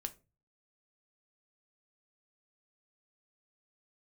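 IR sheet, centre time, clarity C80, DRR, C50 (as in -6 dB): 4 ms, 26.0 dB, 7.5 dB, 19.5 dB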